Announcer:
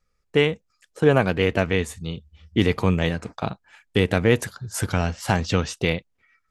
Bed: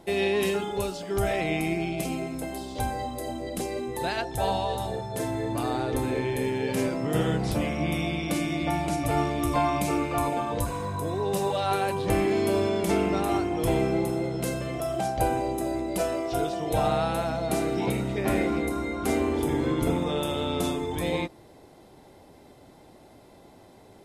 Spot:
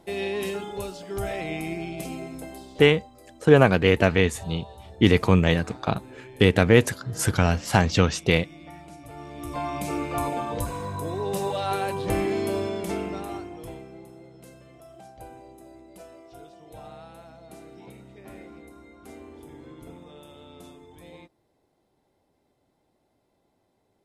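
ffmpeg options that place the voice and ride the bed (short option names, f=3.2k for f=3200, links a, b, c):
-filter_complex "[0:a]adelay=2450,volume=2dB[a];[1:a]volume=12dB,afade=t=out:st=2.35:d=0.75:silence=0.223872,afade=t=in:st=9.18:d=0.99:silence=0.158489,afade=t=out:st=12.2:d=1.64:silence=0.125893[b];[a][b]amix=inputs=2:normalize=0"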